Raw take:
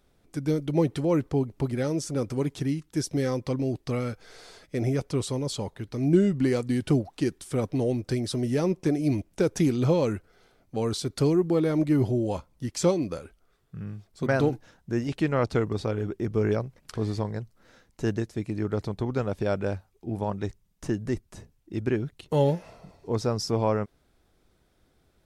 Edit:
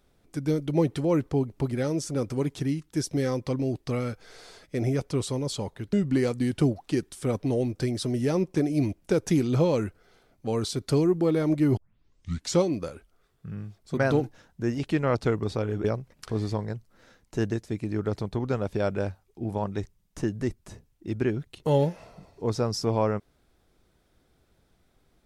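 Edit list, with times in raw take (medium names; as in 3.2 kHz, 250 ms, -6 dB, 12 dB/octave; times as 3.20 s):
5.93–6.22 s: delete
12.06 s: tape start 0.80 s
16.13–16.50 s: delete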